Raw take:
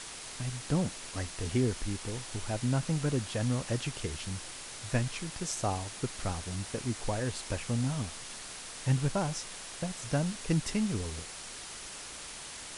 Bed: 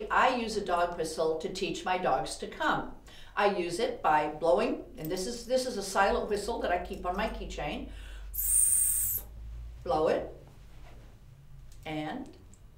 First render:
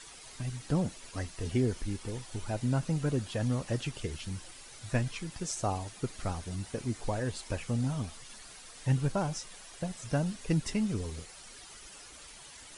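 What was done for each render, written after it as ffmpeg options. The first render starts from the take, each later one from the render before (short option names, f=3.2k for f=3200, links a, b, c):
-af "afftdn=nr=10:nf=-44"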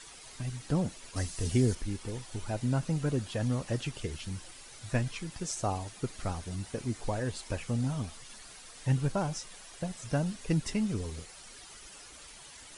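-filter_complex "[0:a]asettb=1/sr,asplit=3[a][b][c];[a]atrim=end=1.164[d];[b]atrim=start=1.16:end=1.75,asetpts=PTS-STARTPTS,afade=t=in:d=0.004:c=qsin,afade=t=out:st=0.586:d=0.004:c=qsin,bass=f=250:g=4,treble=f=4k:g=9[e];[c]atrim=start=1.746[f];[d][e]acrossfade=d=0.004:c1=hsin:c2=qsin[g];[g][f]acrossfade=d=0.004:c1=qsin:c2=hsin"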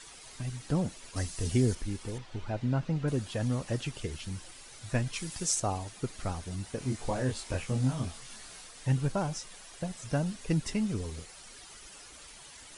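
-filter_complex "[0:a]asettb=1/sr,asplit=3[a][b][c];[a]atrim=end=2.184[d];[b]atrim=start=2.18:end=3.08,asetpts=PTS-STARTPTS,afade=t=in:d=0.004:c=qsin,afade=t=out:st=0.896:d=0.004:c=qsin,lowpass=3.7k[e];[c]atrim=start=3.076[f];[d][e]acrossfade=d=0.004:c1=hsin:c2=qsin[g];[g][f]acrossfade=d=0.004:c1=qsin:c2=hsin,asettb=1/sr,asplit=3[h][i][j];[h]atrim=end=5.134[k];[i]atrim=start=5.13:end=5.6,asetpts=PTS-STARTPTS,afade=t=in:d=0.004:c=qsin,afade=t=out:st=0.466:d=0.004:c=qsin,highshelf=f=4.2k:g=10.5[l];[j]atrim=start=5.596[m];[k][l]acrossfade=d=0.004:c1=hsin:c2=qsin[n];[n][m]acrossfade=d=0.004:c1=qsin:c2=hsin,asettb=1/sr,asplit=3[o][p][q];[o]atrim=end=6.794[r];[p]atrim=start=6.79:end=8.67,asetpts=PTS-STARTPTS,afade=t=in:d=0.004:c=qsin,afade=t=out:st=1.876:d=0.004:c=qsin,asplit=2[s][t];[t]adelay=23,volume=-2.5dB[u];[s][u]amix=inputs=2:normalize=0,atrim=end_sample=82908[v];[q]atrim=start=8.666[w];[r][v]acrossfade=d=0.004:c1=hsin:c2=qsin[x];[x][w]acrossfade=d=0.004:c1=qsin:c2=hsin"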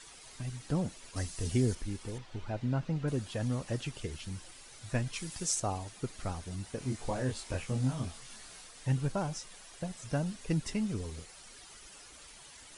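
-af "volume=-2.5dB"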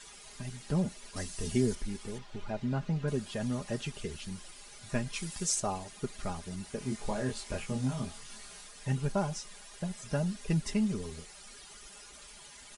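-af "aecho=1:1:4.9:0.59"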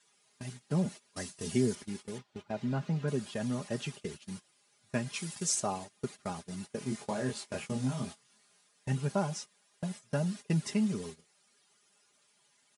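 -af "highpass=f=110:w=0.5412,highpass=f=110:w=1.3066,agate=range=-18dB:threshold=-42dB:ratio=16:detection=peak"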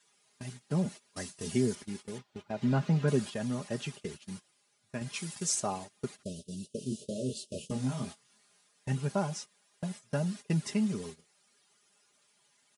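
-filter_complex "[0:a]asettb=1/sr,asplit=3[a][b][c];[a]atrim=end=2.624[d];[b]atrim=start=2.62:end=3.3,asetpts=PTS-STARTPTS,afade=t=in:d=0.004:c=qsin,afade=t=out:st=0.676:d=0.004:c=qsin,acontrast=27[e];[c]atrim=start=3.296[f];[d][e]acrossfade=d=0.004:c1=hsin:c2=qsin[g];[g][f]acrossfade=d=0.004:c1=qsin:c2=hsin,asettb=1/sr,asplit=3[h][i][j];[h]atrim=end=6.234[k];[i]atrim=start=6.23:end=7.71,asetpts=PTS-STARTPTS,afade=t=in:d=0.004:c=qsin,afade=t=out:st=1.476:d=0.004:c=qsin,asuperstop=centerf=1300:order=20:qfactor=0.61[l];[j]atrim=start=7.706[m];[k][l]acrossfade=d=0.004:c1=hsin:c2=qsin[n];[n][m]acrossfade=d=0.004:c1=qsin:c2=hsin,asplit=2[o][p];[o]atrim=end=5.01,asetpts=PTS-STARTPTS,afade=t=out:st=4.32:d=0.69:silence=0.473151[q];[p]atrim=start=5.01,asetpts=PTS-STARTPTS,afade=t=in:d=0.004:c=hsin:silence=0.473151[r];[q][r]concat=n=2:v=0:a=1"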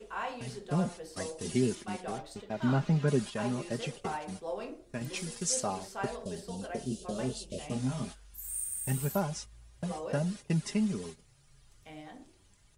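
-filter_complex "[1:a]volume=-12dB[a];[0:a][a]amix=inputs=2:normalize=0"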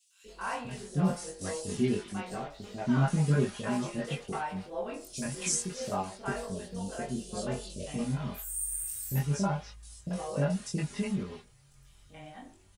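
-filter_complex "[0:a]asplit=2[a][b];[b]adelay=21,volume=-2dB[c];[a][c]amix=inputs=2:normalize=0,acrossover=split=460|4200[d][e][f];[d]adelay=240[g];[e]adelay=280[h];[g][h][f]amix=inputs=3:normalize=0"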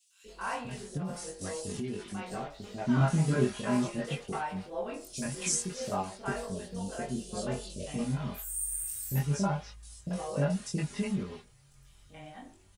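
-filter_complex "[0:a]asettb=1/sr,asplit=3[a][b][c];[a]atrim=end=0.974[d];[b]atrim=start=0.97:end=2.27,asetpts=PTS-STARTPTS,afade=t=in:d=0.004:c=qsin,afade=t=out:st=1.296:d=0.004:c=qsin,acompressor=threshold=-32dB:ratio=6:attack=3.2:release=140:knee=1:detection=peak[e];[c]atrim=start=2.266[f];[d][e]acrossfade=d=0.004:c1=hsin:c2=qsin[g];[g][f]acrossfade=d=0.004:c1=qsin:c2=hsin,asettb=1/sr,asplit=3[h][i][j];[h]atrim=end=2.984[k];[i]atrim=start=2.98:end=3.88,asetpts=PTS-STARTPTS,afade=t=in:d=0.004:c=qsin,afade=t=out:st=0.896:d=0.004:c=qsin,asplit=2[l][m];[m]adelay=24,volume=-4dB[n];[l][n]amix=inputs=2:normalize=0,atrim=end_sample=39690[o];[j]atrim=start=3.876[p];[k][o]acrossfade=d=0.004:c1=hsin:c2=qsin[q];[q][p]acrossfade=d=0.004:c1=qsin:c2=hsin"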